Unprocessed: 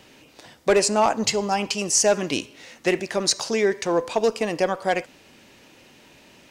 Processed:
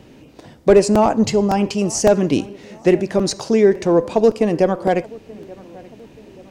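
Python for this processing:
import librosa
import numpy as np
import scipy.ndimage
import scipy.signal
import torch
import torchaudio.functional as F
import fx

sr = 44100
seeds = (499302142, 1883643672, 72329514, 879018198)

y = fx.tilt_shelf(x, sr, db=8.5, hz=660.0)
y = fx.echo_filtered(y, sr, ms=881, feedback_pct=46, hz=1900.0, wet_db=-22)
y = fx.buffer_crackle(y, sr, first_s=0.39, period_s=0.56, block=128, kind='repeat')
y = y * librosa.db_to_amplitude(4.5)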